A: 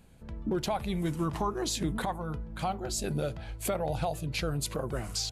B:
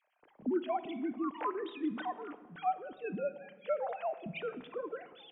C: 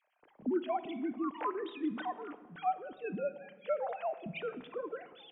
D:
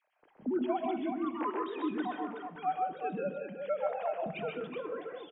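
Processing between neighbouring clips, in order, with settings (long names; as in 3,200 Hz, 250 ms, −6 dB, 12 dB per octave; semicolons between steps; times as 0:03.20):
three sine waves on the formant tracks; rectangular room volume 1,400 cubic metres, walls mixed, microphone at 0.45 metres; level −5.5 dB
no processing that can be heard
high-frequency loss of the air 100 metres; on a send: multi-tap delay 129/149/193/374 ms −4/−7/−13.5/−6.5 dB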